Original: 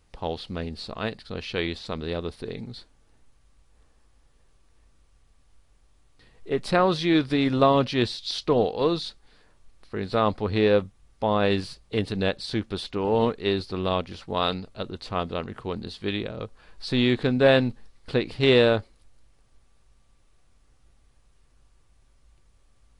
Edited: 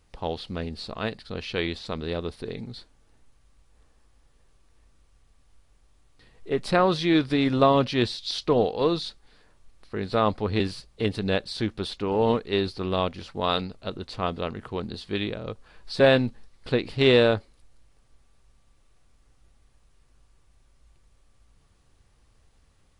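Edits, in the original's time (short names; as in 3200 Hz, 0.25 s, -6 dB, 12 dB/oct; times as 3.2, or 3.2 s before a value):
10.6–11.53 cut
16.93–17.42 cut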